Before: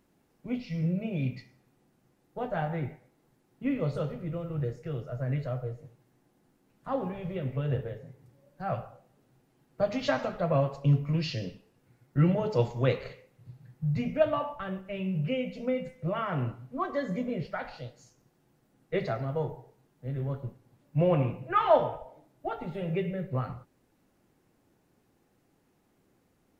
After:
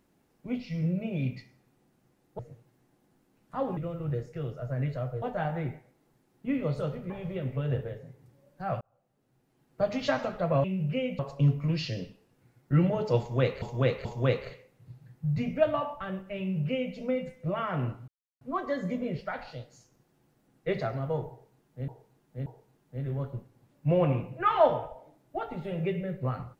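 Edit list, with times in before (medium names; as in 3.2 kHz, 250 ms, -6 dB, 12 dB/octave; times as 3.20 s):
2.39–4.27 s: swap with 5.72–7.10 s
8.81–9.81 s: fade in
12.64–13.07 s: loop, 3 plays
14.99–15.54 s: copy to 10.64 s
16.67 s: insert silence 0.33 s
19.56–20.14 s: loop, 3 plays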